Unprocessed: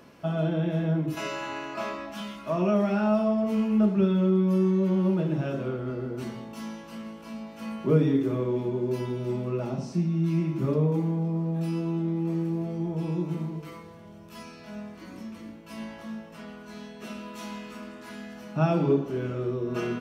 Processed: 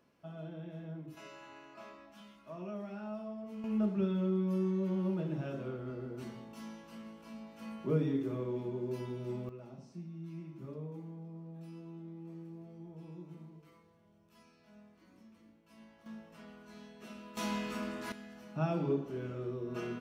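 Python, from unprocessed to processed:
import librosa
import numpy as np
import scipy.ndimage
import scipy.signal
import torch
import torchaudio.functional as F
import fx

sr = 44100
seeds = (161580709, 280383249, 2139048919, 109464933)

y = fx.gain(x, sr, db=fx.steps((0.0, -18.5), (3.64, -9.5), (9.49, -19.5), (16.06, -10.5), (17.37, 2.0), (18.12, -9.5)))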